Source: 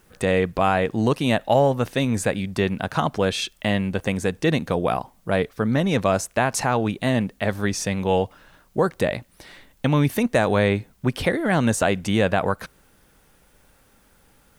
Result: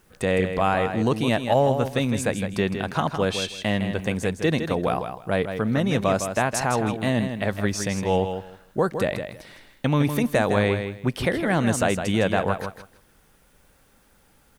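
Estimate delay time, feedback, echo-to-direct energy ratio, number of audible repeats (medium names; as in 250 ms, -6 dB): 160 ms, 19%, -8.0 dB, 2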